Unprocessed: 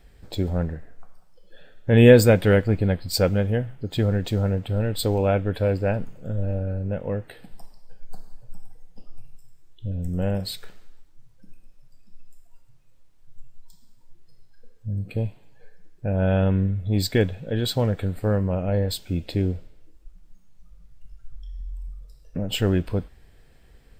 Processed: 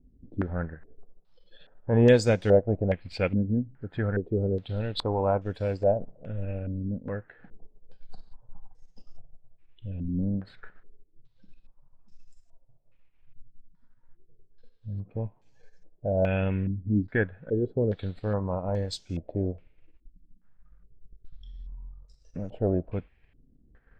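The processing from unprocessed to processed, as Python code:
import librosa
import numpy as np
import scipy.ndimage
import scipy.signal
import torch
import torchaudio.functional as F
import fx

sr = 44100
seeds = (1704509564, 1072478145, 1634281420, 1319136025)

y = fx.transient(x, sr, attack_db=-1, sustain_db=-7)
y = fx.filter_held_lowpass(y, sr, hz=2.4, low_hz=260.0, high_hz=6100.0)
y = y * 10.0 ** (-6.5 / 20.0)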